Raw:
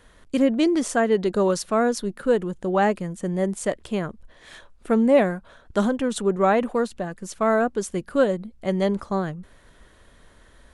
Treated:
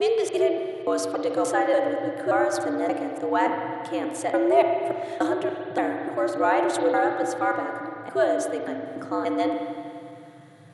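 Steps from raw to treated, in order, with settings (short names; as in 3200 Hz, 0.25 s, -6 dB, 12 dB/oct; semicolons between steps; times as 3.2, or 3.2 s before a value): slices in reverse order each 0.289 s, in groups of 3; spring tank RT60 2.4 s, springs 38/56 ms, chirp 20 ms, DRR 3 dB; frequency shift +110 Hz; gain -3 dB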